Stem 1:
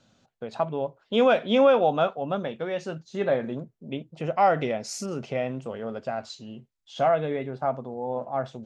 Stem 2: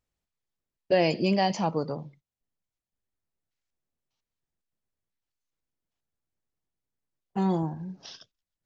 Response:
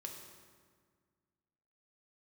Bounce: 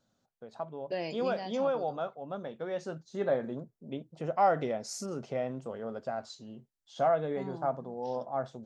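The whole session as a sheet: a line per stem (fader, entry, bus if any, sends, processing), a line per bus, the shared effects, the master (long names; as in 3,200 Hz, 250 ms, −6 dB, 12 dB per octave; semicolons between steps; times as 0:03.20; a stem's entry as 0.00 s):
0:02.21 −11 dB → 0:02.76 −4 dB, 0.00 s, no send, parametric band 2,600 Hz −9.5 dB 0.82 octaves
−3.5 dB, 0.00 s, no send, automatic ducking −12 dB, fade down 1.40 s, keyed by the first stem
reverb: not used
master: low-shelf EQ 200 Hz −4 dB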